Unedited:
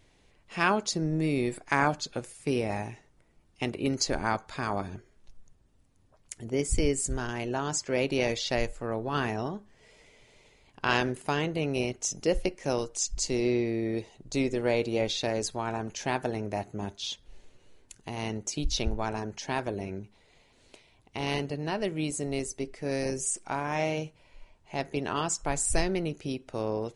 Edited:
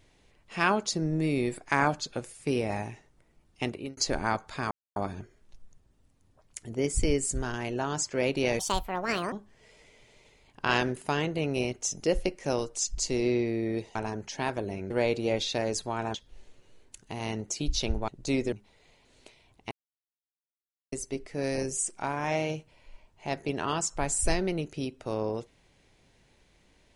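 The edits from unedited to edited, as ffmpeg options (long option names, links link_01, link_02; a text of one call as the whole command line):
ffmpeg -i in.wav -filter_complex "[0:a]asplit=12[link_01][link_02][link_03][link_04][link_05][link_06][link_07][link_08][link_09][link_10][link_11][link_12];[link_01]atrim=end=3.97,asetpts=PTS-STARTPTS,afade=type=out:start_time=3.66:duration=0.31[link_13];[link_02]atrim=start=3.97:end=4.71,asetpts=PTS-STARTPTS,afade=type=in:duration=0.004:curve=hsin,afade=type=out:start_time=0.736:duration=0.004:curve=hsin,apad=pad_dur=0.25[link_14];[link_03]atrim=start=4.71:end=8.344,asetpts=PTS-STARTPTS,afade=type=in:duration=0.004:curve=hsin[link_15];[link_04]atrim=start=8.34:end=9.52,asetpts=PTS-STARTPTS,asetrate=71001,aresample=44100[link_16];[link_05]atrim=start=9.516:end=14.152[link_17];[link_06]atrim=start=19.048:end=20.002[link_18];[link_07]atrim=start=14.588:end=15.832[link_19];[link_08]atrim=start=17.108:end=19.052[link_20];[link_09]atrim=start=14.148:end=14.592[link_21];[link_10]atrim=start=19.998:end=21.19,asetpts=PTS-STARTPTS,afade=type=out:start_time=1.188:duration=0.004:curve=hsin[link_22];[link_11]atrim=start=21.19:end=22.4,asetpts=PTS-STARTPTS,volume=0[link_23];[link_12]atrim=start=22.4,asetpts=PTS-STARTPTS,afade=type=in:duration=0.004:curve=hsin[link_24];[link_13][link_14][link_15]concat=n=3:v=0:a=1[link_25];[link_25][link_16]acrossfade=duration=0.004:curve1=hsin:curve2=hsin[link_26];[link_26][link_17]acrossfade=duration=0.004:curve1=hsin:curve2=hsin[link_27];[link_27][link_18]acrossfade=duration=0.004:curve1=hsin:curve2=hsin[link_28];[link_28][link_19]acrossfade=duration=0.004:curve1=hsin:curve2=hsin[link_29];[link_29][link_20]acrossfade=duration=0.004:curve1=hsin:curve2=hsin[link_30];[link_30][link_21]acrossfade=duration=0.004:curve1=hsin:curve2=hsin[link_31];[link_22][link_23][link_24]concat=n=3:v=0:a=1[link_32];[link_31][link_32]acrossfade=duration=0.004:curve1=hsin:curve2=hsin" out.wav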